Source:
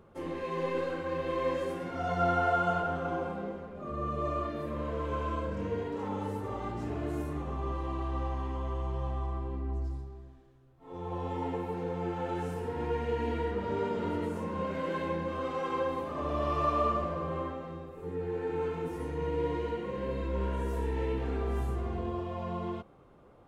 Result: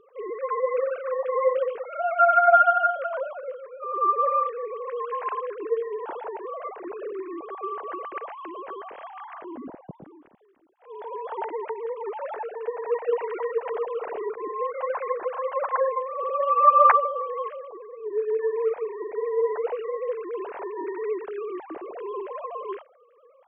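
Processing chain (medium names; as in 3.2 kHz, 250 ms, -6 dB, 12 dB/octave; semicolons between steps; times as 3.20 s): formants replaced by sine waves; trim +6.5 dB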